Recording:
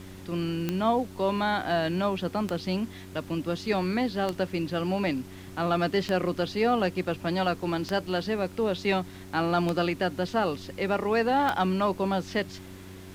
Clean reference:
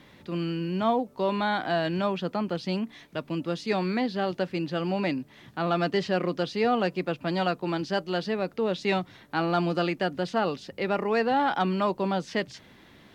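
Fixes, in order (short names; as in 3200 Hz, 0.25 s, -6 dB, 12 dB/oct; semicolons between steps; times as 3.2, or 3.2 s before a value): de-click; de-hum 93.9 Hz, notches 4; noise print and reduce 9 dB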